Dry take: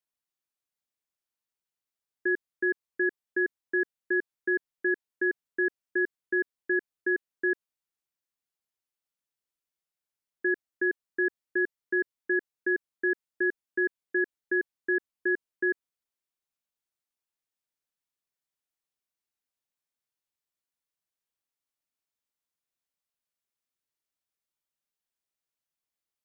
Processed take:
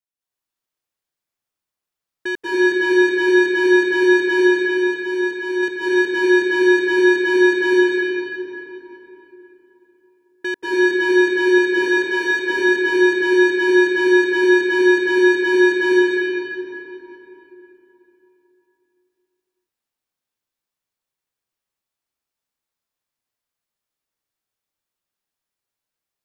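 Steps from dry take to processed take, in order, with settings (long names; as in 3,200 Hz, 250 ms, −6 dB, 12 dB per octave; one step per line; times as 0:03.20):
leveller curve on the samples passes 2
0:04.34–0:05.63: downward expander −17 dBFS
0:11.58–0:12.31: high-pass filter 450 Hz 24 dB per octave
convolution reverb RT60 3.7 s, pre-delay 181 ms, DRR −10.5 dB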